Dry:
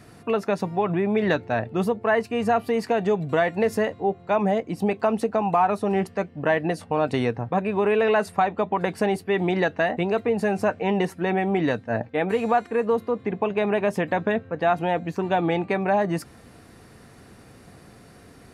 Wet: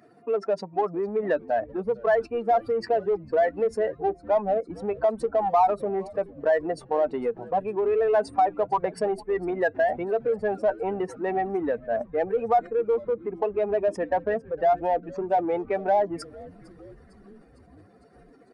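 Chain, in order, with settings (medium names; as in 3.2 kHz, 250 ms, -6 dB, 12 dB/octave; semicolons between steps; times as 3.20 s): spectral contrast enhancement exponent 2; resampled via 22.05 kHz; in parallel at -9.5 dB: saturation -25.5 dBFS, distortion -9 dB; on the sum: high-pass 440 Hz 12 dB/octave; frequency-shifting echo 454 ms, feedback 65%, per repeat -130 Hz, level -22 dB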